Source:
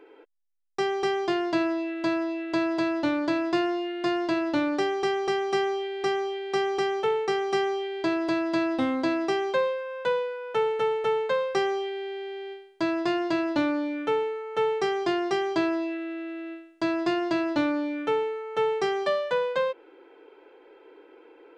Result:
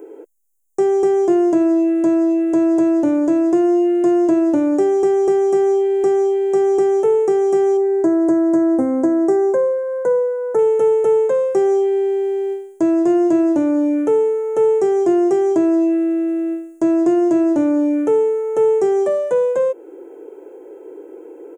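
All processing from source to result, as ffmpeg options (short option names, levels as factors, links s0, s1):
-filter_complex "[0:a]asettb=1/sr,asplit=3[s0][s1][s2];[s0]atrim=end=7.774[s3];[s1]atrim=start=7.77:end=10.59,asetpts=PTS-STARTPTS,afade=t=in:d=0.004:c=qsin,afade=t=out:st=2.816:d=0.004:c=qsin,asuperstop=centerf=2800:order=4:qfactor=1.1,highshelf=f=3000:t=q:w=3:g=-6[s4];[s2]atrim=start=10.586[s5];[s3][s4]acrossfade=d=0.004:c1=hsin:c2=qsin[s6];[s6][s5]acrossfade=d=0.004:c1=qsin:c2=hsin,alimiter=limit=0.0944:level=0:latency=1:release=377,acrossover=split=2800[s7][s8];[s8]acompressor=threshold=0.00355:ratio=4:attack=1:release=60[s9];[s7][s9]amix=inputs=2:normalize=0,firequalizer=gain_entry='entry(170,0);entry(350,9);entry(1100,-7);entry(4300,-19);entry(6700,14)':delay=0.05:min_phase=1,volume=2.66"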